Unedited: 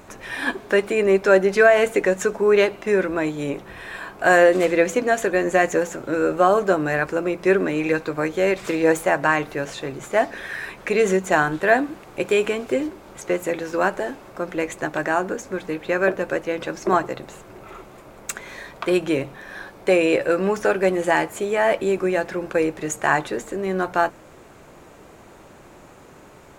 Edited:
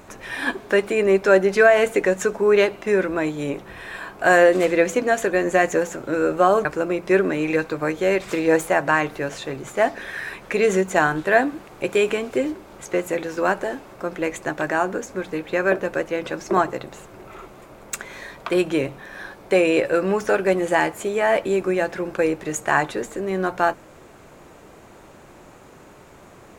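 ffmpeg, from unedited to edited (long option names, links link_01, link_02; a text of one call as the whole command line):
ffmpeg -i in.wav -filter_complex "[0:a]asplit=2[link_01][link_02];[link_01]atrim=end=6.652[link_03];[link_02]atrim=start=7.008[link_04];[link_03][link_04]acrossfade=duration=0.004:curve1=hsin:curve2=hsin" out.wav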